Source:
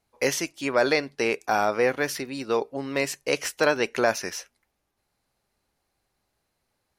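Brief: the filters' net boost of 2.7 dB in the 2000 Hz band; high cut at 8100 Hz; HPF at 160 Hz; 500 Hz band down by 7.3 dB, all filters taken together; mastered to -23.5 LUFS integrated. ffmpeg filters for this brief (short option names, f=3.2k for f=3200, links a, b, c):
-af "highpass=160,lowpass=8.1k,equalizer=f=500:t=o:g=-9,equalizer=f=2k:t=o:g=4,volume=3.5dB"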